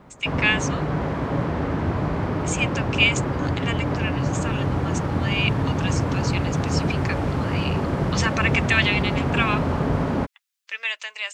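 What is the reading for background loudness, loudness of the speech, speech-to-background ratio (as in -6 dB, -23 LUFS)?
-24.5 LUFS, -26.0 LUFS, -1.5 dB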